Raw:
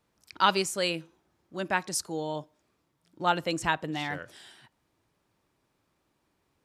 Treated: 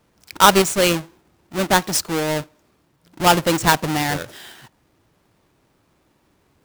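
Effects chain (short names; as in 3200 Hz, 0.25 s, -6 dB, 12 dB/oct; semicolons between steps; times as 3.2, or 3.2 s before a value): half-waves squared off; gain +7.5 dB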